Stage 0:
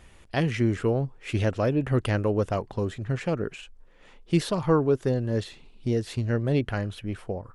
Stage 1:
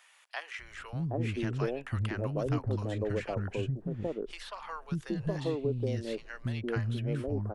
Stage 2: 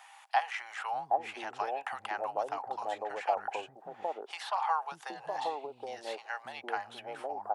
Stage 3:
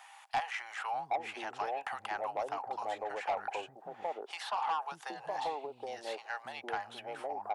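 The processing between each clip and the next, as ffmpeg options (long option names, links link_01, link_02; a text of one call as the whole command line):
ffmpeg -i in.wav -filter_complex "[0:a]acrossover=split=2000|4000[link_01][link_02][link_03];[link_01]acompressor=threshold=-25dB:ratio=4[link_04];[link_02]acompressor=threshold=-46dB:ratio=4[link_05];[link_03]acompressor=threshold=-57dB:ratio=4[link_06];[link_04][link_05][link_06]amix=inputs=3:normalize=0,acrossover=split=240|810[link_07][link_08][link_09];[link_07]adelay=590[link_10];[link_08]adelay=770[link_11];[link_10][link_11][link_09]amix=inputs=3:normalize=0,volume=-1.5dB" out.wav
ffmpeg -i in.wav -af "acompressor=threshold=-32dB:ratio=6,highpass=frequency=800:width_type=q:width=10,volume=2.5dB" out.wav
ffmpeg -i in.wav -af "asoftclip=type=tanh:threshold=-26.5dB" out.wav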